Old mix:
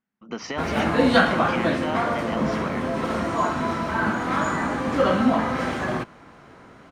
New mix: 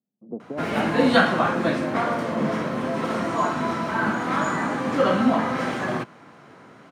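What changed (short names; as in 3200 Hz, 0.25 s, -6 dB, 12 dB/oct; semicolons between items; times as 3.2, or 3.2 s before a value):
speech: add steep low-pass 690 Hz 36 dB/oct; master: add HPF 110 Hz 24 dB/oct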